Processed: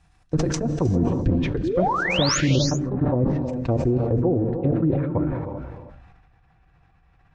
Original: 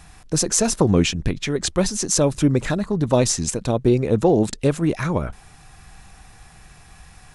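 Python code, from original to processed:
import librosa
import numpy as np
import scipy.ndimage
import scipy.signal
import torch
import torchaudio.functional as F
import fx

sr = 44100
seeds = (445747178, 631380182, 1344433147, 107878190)

y = fx.lowpass(x, sr, hz=fx.steps((0.0, 9100.0), (2.06, 2400.0)), slope=12)
y = fx.level_steps(y, sr, step_db=20)
y = fx.low_shelf(y, sr, hz=190.0, db=3.5)
y = fx.env_lowpass_down(y, sr, base_hz=530.0, full_db=-16.5)
y = y + 10.0 ** (-11.5 / 20.0) * np.pad(y, (int(314 * sr / 1000.0), 0))[:len(y)]
y = fx.spec_paint(y, sr, seeds[0], shape='rise', start_s=1.63, length_s=0.75, low_hz=290.0, high_hz=7200.0, level_db=-23.0)
y = fx.high_shelf(y, sr, hz=6000.0, db=-6.5)
y = fx.notch_comb(y, sr, f0_hz=210.0)
y = fx.rev_gated(y, sr, seeds[1], gate_ms=420, shape='rising', drr_db=7.0)
y = fx.sustainer(y, sr, db_per_s=35.0)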